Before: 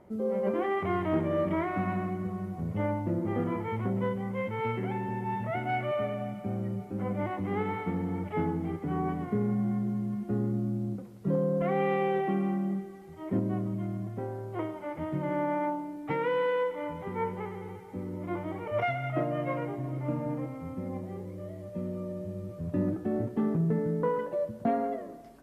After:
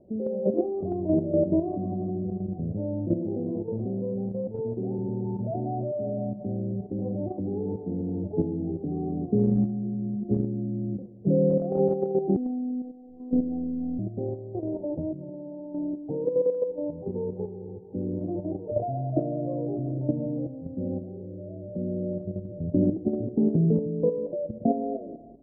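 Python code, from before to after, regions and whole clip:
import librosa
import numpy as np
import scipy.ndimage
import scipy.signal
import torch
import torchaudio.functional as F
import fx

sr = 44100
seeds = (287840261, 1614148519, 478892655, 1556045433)

y = fx.chain(x, sr, fx.median_filter(points=41),
    fx.highpass(hz=150.0, slope=6),
    fx.peak_eq(hz=1700.0, db=9.0, octaves=0.9), at=(3.14, 4.99))
y = fx.chain(y, sr, fx.robotise(hz=251.0),
    fx.doubler(ms=48.0, db=-14), at=(12.36, 13.99))
y = fx.chain(y, sr, fx.low_shelf(hz=100.0, db=6.0),
    fx.over_compress(threshold_db=-35.0, ratio=-0.5), at=(14.59, 15.94))
y = scipy.signal.sosfilt(scipy.signal.butter(8, 680.0, 'lowpass', fs=sr, output='sos'), y)
y = fx.peak_eq(y, sr, hz=300.0, db=3.0, octaves=0.94)
y = fx.level_steps(y, sr, step_db=9)
y = y * 10.0 ** (6.5 / 20.0)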